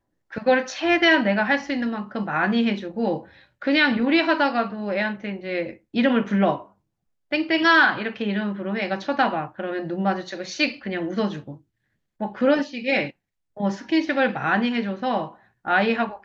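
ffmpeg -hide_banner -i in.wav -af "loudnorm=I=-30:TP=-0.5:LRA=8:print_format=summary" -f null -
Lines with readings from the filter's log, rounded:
Input Integrated:    -22.8 LUFS
Input True Peak:      -6.1 dBTP
Input LRA:             3.9 LU
Input Threshold:     -33.2 LUFS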